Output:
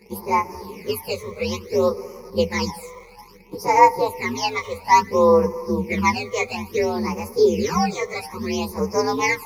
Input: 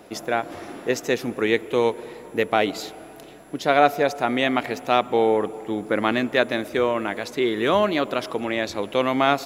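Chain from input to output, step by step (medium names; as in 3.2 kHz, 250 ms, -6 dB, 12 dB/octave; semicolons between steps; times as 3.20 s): frequency axis rescaled in octaves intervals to 123%; in parallel at -6 dB: bit crusher 7-bit; on the sum: phase shifter stages 12, 0.59 Hz, lowest notch 270–3600 Hz; rippled EQ curve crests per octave 0.84, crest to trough 17 dB; trim -1 dB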